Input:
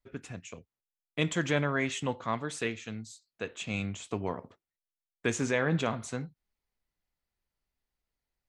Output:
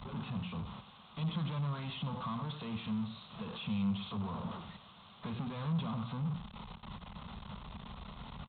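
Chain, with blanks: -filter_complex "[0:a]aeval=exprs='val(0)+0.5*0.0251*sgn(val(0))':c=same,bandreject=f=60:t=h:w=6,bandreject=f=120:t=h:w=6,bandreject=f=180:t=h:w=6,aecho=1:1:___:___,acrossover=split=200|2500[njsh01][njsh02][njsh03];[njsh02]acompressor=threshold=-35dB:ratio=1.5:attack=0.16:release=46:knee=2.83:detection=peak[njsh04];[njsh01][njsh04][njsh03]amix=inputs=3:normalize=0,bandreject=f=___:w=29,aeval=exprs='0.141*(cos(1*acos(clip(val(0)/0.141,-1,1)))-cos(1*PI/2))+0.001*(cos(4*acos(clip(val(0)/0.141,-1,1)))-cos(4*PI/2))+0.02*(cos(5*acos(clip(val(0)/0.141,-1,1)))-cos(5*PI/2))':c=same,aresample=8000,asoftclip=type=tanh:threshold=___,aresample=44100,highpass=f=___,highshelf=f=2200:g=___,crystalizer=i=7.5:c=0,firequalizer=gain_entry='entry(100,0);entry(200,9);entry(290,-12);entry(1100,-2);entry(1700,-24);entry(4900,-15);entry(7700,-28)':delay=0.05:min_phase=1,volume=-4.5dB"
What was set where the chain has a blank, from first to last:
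97, 0.188, 2300, -30.5dB, 52, 6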